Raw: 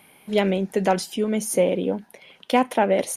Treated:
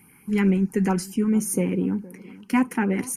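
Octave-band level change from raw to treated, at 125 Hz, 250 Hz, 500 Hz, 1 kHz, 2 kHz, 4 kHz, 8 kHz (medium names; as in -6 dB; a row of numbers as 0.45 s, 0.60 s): +5.0 dB, +4.0 dB, -8.0 dB, -8.0 dB, -1.5 dB, -10.0 dB, -0.5 dB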